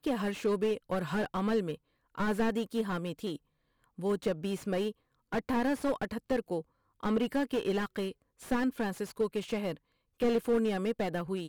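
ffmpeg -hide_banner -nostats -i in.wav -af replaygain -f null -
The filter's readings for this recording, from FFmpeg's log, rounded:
track_gain = +13.1 dB
track_peak = 0.104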